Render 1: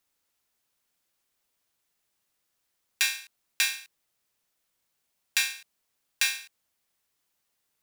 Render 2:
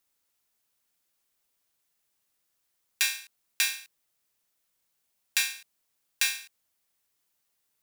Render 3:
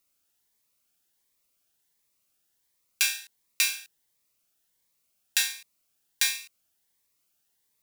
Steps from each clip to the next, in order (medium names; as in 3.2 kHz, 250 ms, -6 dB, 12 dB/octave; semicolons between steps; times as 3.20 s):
treble shelf 7 kHz +4.5 dB; trim -2 dB
Shepard-style phaser rising 1.4 Hz; trim +2.5 dB